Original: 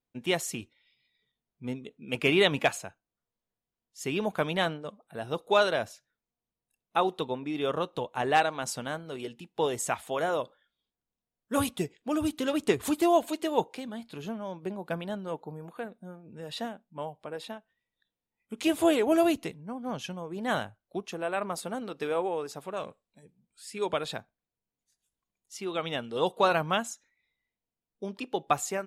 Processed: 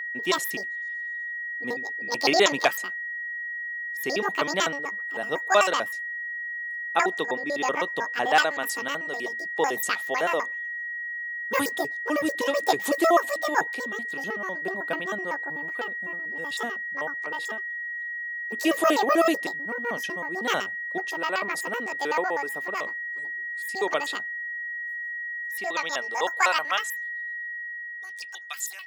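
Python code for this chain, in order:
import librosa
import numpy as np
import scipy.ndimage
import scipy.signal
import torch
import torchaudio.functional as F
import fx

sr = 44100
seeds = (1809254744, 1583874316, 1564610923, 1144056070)

y = fx.pitch_trill(x, sr, semitones=11.0, every_ms=63)
y = y + 10.0 ** (-34.0 / 20.0) * np.sin(2.0 * np.pi * 1900.0 * np.arange(len(y)) / sr)
y = fx.filter_sweep_highpass(y, sr, from_hz=270.0, to_hz=3200.0, start_s=25.1, end_s=28.41, q=0.77)
y = F.gain(torch.from_numpy(y), 3.5).numpy()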